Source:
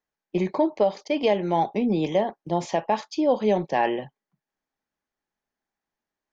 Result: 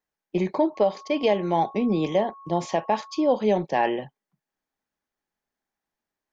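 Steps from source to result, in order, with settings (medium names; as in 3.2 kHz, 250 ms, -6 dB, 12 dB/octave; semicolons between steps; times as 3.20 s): 0.74–3.28 s: whistle 1.1 kHz -43 dBFS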